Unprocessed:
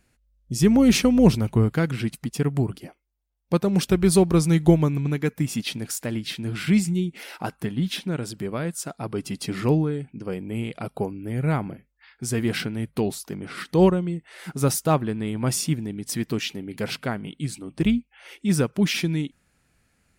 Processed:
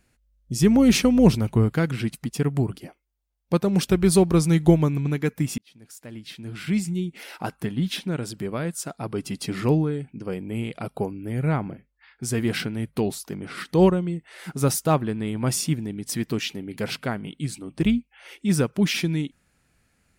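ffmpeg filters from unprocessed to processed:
-filter_complex "[0:a]asettb=1/sr,asplit=3[a][b][c];[a]atrim=end=11.484[d];[b]atrim=start=11.48:end=12.23,asetpts=PTS-STARTPTS,afade=t=in:d=0.004:c=qsin,afade=t=out:st=0.746:d=0.004:c=qsin,lowpass=f=3.6k:p=1[e];[c]atrim=start=12.226[f];[d][e]acrossfade=d=0.004:c1=hsin:c2=qsin[g];[g][f]acrossfade=d=0.004:c1=qsin:c2=hsin,asplit=2[h][i];[h]atrim=end=5.58,asetpts=PTS-STARTPTS,afade=t=out:st=5.576:d=0.004:c=hsin[j];[i]atrim=start=5.58,asetpts=PTS-STARTPTS,afade=t=in:d=1.92[k];[j][k]concat=n=2:v=0:a=1"

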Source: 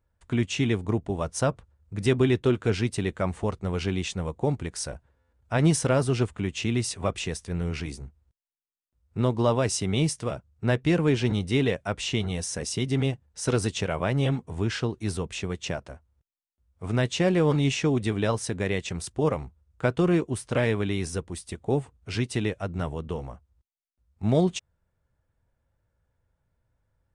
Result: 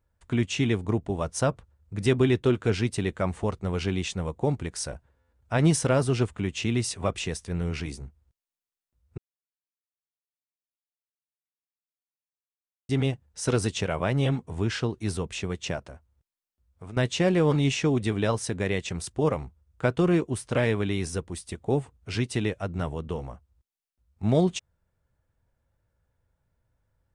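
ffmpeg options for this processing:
-filter_complex "[0:a]asettb=1/sr,asplit=3[a][b][c];[a]atrim=end=15.864[d];[b]atrim=start=15.86:end=16.97,asetpts=PTS-STARTPTS,afade=t=in:d=0.004:c=qsin,afade=t=out:st=1.106:d=0.004:c=qsin,acompressor=threshold=-37dB:ratio=6:attack=3.2:release=140:knee=1:detection=peak[e];[c]atrim=start=16.966[f];[d][e]acrossfade=d=0.004:c1=hsin:c2=qsin[g];[g][f]acrossfade=d=0.004:c1=qsin:c2=hsin,asplit=3[h][i][j];[h]atrim=end=9.18,asetpts=PTS-STARTPTS,afade=t=out:st=9.176:d=0.004:c=hsin[k];[i]atrim=start=9.18:end=12.89,asetpts=PTS-STARTPTS,volume=0[l];[j]atrim=start=12.89,asetpts=PTS-STARTPTS,afade=t=in:d=0.004:c=hsin[m];[k][l][m]concat=n=3:v=0:a=1"

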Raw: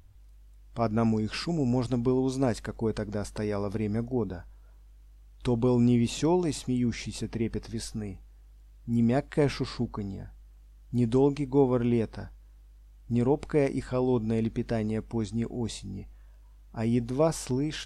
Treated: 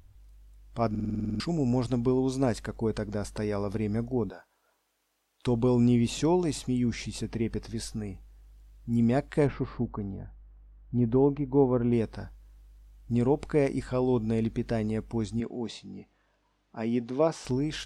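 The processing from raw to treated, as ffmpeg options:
-filter_complex "[0:a]asettb=1/sr,asplit=3[a][b][c];[a]atrim=end=4.304[d];[b]atrim=start=4.3:end=5.47,asetpts=PTS-STARTPTS,afade=t=in:d=0.004:c=qsin,afade=t=out:st=1.166:d=0.004:c=qsin,highpass=470[e];[c]atrim=start=5.466[f];[d][e]acrossfade=d=0.004:c1=hsin:c2=qsin[g];[g][f]acrossfade=d=0.004:c1=qsin:c2=hsin,asplit=3[h][i][j];[h]afade=t=out:st=9.46:d=0.02[k];[i]lowpass=1.5k,afade=t=in:st=9.46:d=0.02,afade=t=out:st=11.91:d=0.02[l];[j]afade=t=in:st=11.91:d=0.02[m];[k][l][m]amix=inputs=3:normalize=0,asettb=1/sr,asplit=3[n][o][p];[n]atrim=end=15.404[q];[o]atrim=start=15.4:end=17.45,asetpts=PTS-STARTPTS,afade=t=in:d=0.004:c=qsin,afade=t=out:st=2.046:d=0.004:c=qsin,highpass=200,lowpass=4.8k[r];[p]atrim=start=17.446[s];[q][r]acrossfade=d=0.004:c1=hsin:c2=qsin[t];[t][s]acrossfade=d=0.004:c1=qsin:c2=hsin,asplit=11[u][v][w][x][y][z][aa][ab][ac][ad][ae];[u]atrim=end=0.952[af];[v]atrim=start=0.898:end=0.952[ag];[w]atrim=start=0.898:end=0.952[ah];[x]atrim=start=0.898:end=0.952[ai];[y]atrim=start=0.898:end=0.952[aj];[z]atrim=start=0.898:end=0.952[ak];[aa]atrim=start=0.898:end=0.952[al];[ab]atrim=start=0.898:end=0.952[am];[ac]atrim=start=0.898:end=0.952[an];[ad]atrim=start=0.898:end=0.952[ao];[ae]atrim=start=1.398[ap];[af][ag]acrossfade=d=0.004:c1=hsin:c2=hsin[aq];[aq][ah]acrossfade=d=0.004:c1=hsin:c2=hsin[ar];[ar][ai]acrossfade=d=0.004:c1=hsin:c2=hsin[as];[as][aj]acrossfade=d=0.004:c1=hsin:c2=hsin[at];[at][ak]acrossfade=d=0.004:c1=hsin:c2=hsin[au];[au][al]acrossfade=d=0.004:c1=hsin:c2=hsin[av];[av][am]acrossfade=d=0.004:c1=hsin:c2=hsin[aw];[aw][an]acrossfade=d=0.004:c1=hsin:c2=hsin[ax];[ax][ao]acrossfade=d=0.004:c1=hsin:c2=hsin[ay];[ay][ap]acrossfade=d=0.004:c1=hsin:c2=hsin"

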